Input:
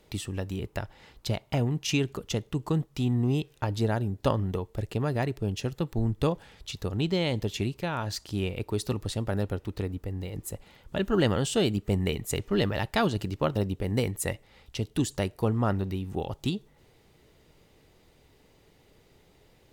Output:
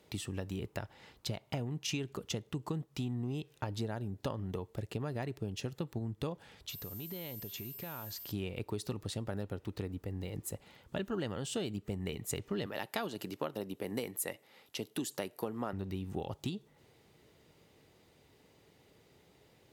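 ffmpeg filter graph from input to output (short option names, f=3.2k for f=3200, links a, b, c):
-filter_complex "[0:a]asettb=1/sr,asplit=3[a][b][c];[a]atrim=end=6.694[d];[b]atrim=start=6.69:end=8.32,asetpts=PTS-STARTPTS,afade=t=in:d=0.004:c=qsin,afade=t=out:st=1.626:d=0.004:c=qsin,acompressor=threshold=-37dB:ratio=8:attack=3.2:release=140:knee=1:detection=peak,aeval=exprs='val(0)+0.00708*sin(2*PI*13000*n/s)':c=same,acrusher=bits=7:mix=0:aa=0.5[e];[c]atrim=start=8.316[f];[d][e]acrossfade=d=0.004:c1=hsin:c2=qsin[g];[g][f]acrossfade=d=0.004:c1=qsin:c2=hsin,asettb=1/sr,asplit=3[h][i][j];[h]atrim=end=12.664[k];[i]atrim=start=12.66:end=15.73,asetpts=PTS-STARTPTS,afade=t=in:d=0.004:c=qsin,afade=t=out:st=3.066:d=0.004:c=qsin,highpass=240,equalizer=f=12k:w=2.8:g=12[l];[j]atrim=start=15.726[m];[k][l]acrossfade=d=0.004:c1=hsin:c2=qsin[n];[n][m]acrossfade=d=0.004:c1=qsin:c2=hsin,acompressor=threshold=-30dB:ratio=6,highpass=86,volume=-3dB"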